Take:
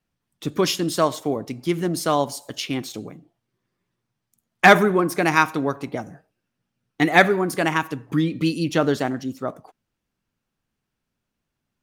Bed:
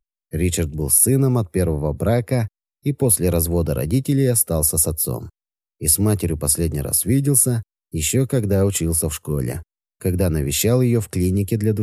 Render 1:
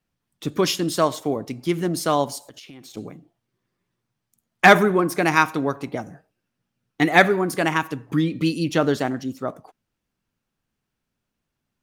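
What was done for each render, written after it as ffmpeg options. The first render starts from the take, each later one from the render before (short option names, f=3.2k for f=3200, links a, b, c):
-filter_complex "[0:a]asettb=1/sr,asplit=3[a][b][c];[a]atrim=end=2.384[d];[b]atrim=start=2.38:end=2.97,asetpts=PTS-STARTPTS,afade=t=in:d=0.004:c=qsin,afade=t=out:st=0.586:d=0.004:c=qsin,acompressor=threshold=-39dB:ratio=12:attack=3.2:release=140:knee=1:detection=peak[e];[c]atrim=start=2.966[f];[d][e]acrossfade=d=0.004:c1=hsin:c2=qsin[g];[g][f]acrossfade=d=0.004:c1=qsin:c2=hsin"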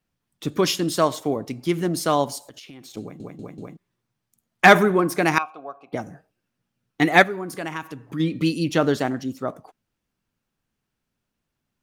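-filter_complex "[0:a]asettb=1/sr,asplit=3[a][b][c];[a]atrim=end=5.384[d];[b]atrim=start=5.38:end=5.93,asetpts=PTS-STARTPTS,afade=t=in:d=0.004:c=qsin,afade=t=out:st=0.546:d=0.004:c=qsin,asplit=3[e][f][g];[e]bandpass=f=730:t=q:w=8,volume=0dB[h];[f]bandpass=f=1.09k:t=q:w=8,volume=-6dB[i];[g]bandpass=f=2.44k:t=q:w=8,volume=-9dB[j];[h][i][j]amix=inputs=3:normalize=0[k];[c]atrim=start=5.926[l];[d][k]acrossfade=d=0.004:c1=hsin:c2=qsin[m];[m][l]acrossfade=d=0.004:c1=qsin:c2=hsin,asplit=3[n][o][p];[n]afade=t=out:st=7.22:d=0.02[q];[o]acompressor=threshold=-42dB:ratio=1.5:attack=3.2:release=140:knee=1:detection=peak,afade=t=in:st=7.22:d=0.02,afade=t=out:st=8.19:d=0.02[r];[p]afade=t=in:st=8.19:d=0.02[s];[q][r][s]amix=inputs=3:normalize=0,asplit=5[t][u][v][w][x];[t]atrim=end=3.202[y];[u]atrim=start=3.008:end=3.202[z];[v]atrim=start=3.008:end=3.202[aa];[w]atrim=start=3.008:end=3.202[ab];[x]atrim=start=3.768[ac];[y][z]acrossfade=d=0.004:c1=hsin:c2=hsin[ad];[ad][aa]acrossfade=d=0.004:c1=hsin:c2=hsin[ae];[ae][ab]acrossfade=d=0.004:c1=hsin:c2=hsin[af];[af][ac]acrossfade=d=0.004:c1=hsin:c2=hsin"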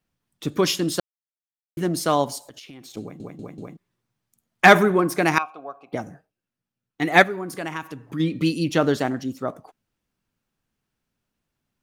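-filter_complex "[0:a]asplit=5[a][b][c][d][e];[a]atrim=end=1,asetpts=PTS-STARTPTS,afade=t=out:st=0.996:d=0.004:c=hsin[f];[b]atrim=start=1:end=1.77,asetpts=PTS-STARTPTS,volume=0[g];[c]atrim=start=1.77:end=6.3,asetpts=PTS-STARTPTS,afade=t=in:d=0.004:c=hsin,afade=t=out:st=4.31:d=0.22:silence=0.334965[h];[d]atrim=start=6.3:end=6.96,asetpts=PTS-STARTPTS,volume=-9.5dB[i];[e]atrim=start=6.96,asetpts=PTS-STARTPTS,afade=t=in:d=0.22:silence=0.334965[j];[f][g][h][i][j]concat=n=5:v=0:a=1"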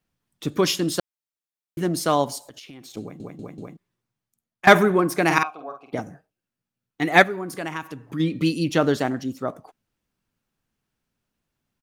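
-filter_complex "[0:a]asplit=3[a][b][c];[a]afade=t=out:st=5.29:d=0.02[d];[b]asplit=2[e][f];[f]adelay=48,volume=-5dB[g];[e][g]amix=inputs=2:normalize=0,afade=t=in:st=5.29:d=0.02,afade=t=out:st=5.99:d=0.02[h];[c]afade=t=in:st=5.99:d=0.02[i];[d][h][i]amix=inputs=3:normalize=0,asplit=2[j][k];[j]atrim=end=4.67,asetpts=PTS-STARTPTS,afade=t=out:st=3.59:d=1.08:silence=0.125893[l];[k]atrim=start=4.67,asetpts=PTS-STARTPTS,afade=t=in:d=0.004:c=hsin:silence=0.125893[m];[l][m]concat=n=2:v=0:a=1"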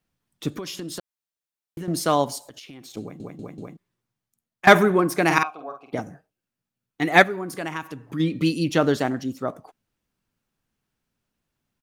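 -filter_complex "[0:a]asettb=1/sr,asplit=3[a][b][c];[a]atrim=end=0.544[d];[b]atrim=start=0.54:end=1.88,asetpts=PTS-STARTPTS,afade=t=in:d=0.004:c=qsin,afade=t=out:st=1.336:d=0.004:c=qsin,acompressor=threshold=-29dB:ratio=16:attack=3.2:release=140:knee=1:detection=peak[e];[c]atrim=start=1.876[f];[d][e]acrossfade=d=0.004:c1=hsin:c2=qsin[g];[g][f]acrossfade=d=0.004:c1=qsin:c2=hsin"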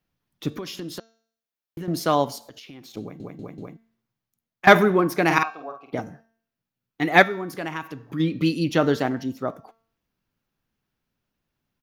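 -af "equalizer=f=8.4k:w=1.9:g=-10,bandreject=f=225.8:t=h:w=4,bandreject=f=451.6:t=h:w=4,bandreject=f=677.4:t=h:w=4,bandreject=f=903.2:t=h:w=4,bandreject=f=1.129k:t=h:w=4,bandreject=f=1.3548k:t=h:w=4,bandreject=f=1.5806k:t=h:w=4,bandreject=f=1.8064k:t=h:w=4,bandreject=f=2.0322k:t=h:w=4,bandreject=f=2.258k:t=h:w=4,bandreject=f=2.4838k:t=h:w=4,bandreject=f=2.7096k:t=h:w=4,bandreject=f=2.9354k:t=h:w=4,bandreject=f=3.1612k:t=h:w=4,bandreject=f=3.387k:t=h:w=4,bandreject=f=3.6128k:t=h:w=4,bandreject=f=3.8386k:t=h:w=4,bandreject=f=4.0644k:t=h:w=4,bandreject=f=4.2902k:t=h:w=4,bandreject=f=4.516k:t=h:w=4,bandreject=f=4.7418k:t=h:w=4,bandreject=f=4.9676k:t=h:w=4,bandreject=f=5.1934k:t=h:w=4,bandreject=f=5.4192k:t=h:w=4,bandreject=f=5.645k:t=h:w=4,bandreject=f=5.8708k:t=h:w=4,bandreject=f=6.0966k:t=h:w=4,bandreject=f=6.3224k:t=h:w=4,bandreject=f=6.5482k:t=h:w=4,bandreject=f=6.774k:t=h:w=4,bandreject=f=6.9998k:t=h:w=4"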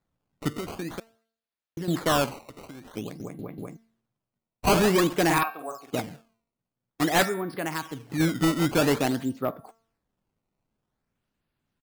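-af "aresample=11025,volume=17dB,asoftclip=hard,volume=-17dB,aresample=44100,acrusher=samples=15:mix=1:aa=0.000001:lfo=1:lforange=24:lforate=0.5"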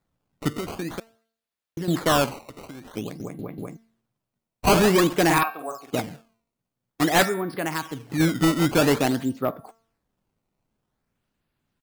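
-af "volume=3dB"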